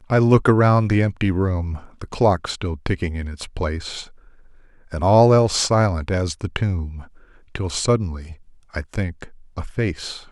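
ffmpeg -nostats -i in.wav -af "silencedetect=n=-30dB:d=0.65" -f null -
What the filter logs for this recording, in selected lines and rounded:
silence_start: 4.04
silence_end: 4.92 | silence_duration: 0.89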